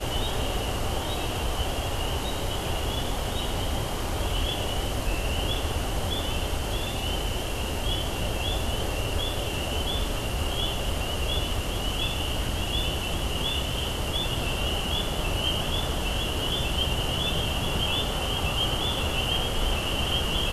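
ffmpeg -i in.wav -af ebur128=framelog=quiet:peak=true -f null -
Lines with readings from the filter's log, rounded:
Integrated loudness:
  I:         -27.8 LUFS
  Threshold: -37.8 LUFS
Loudness range:
  LRA:         3.0 LU
  Threshold: -47.9 LUFS
  LRA low:   -29.1 LUFS
  LRA high:  -26.0 LUFS
True peak:
  Peak:      -12.5 dBFS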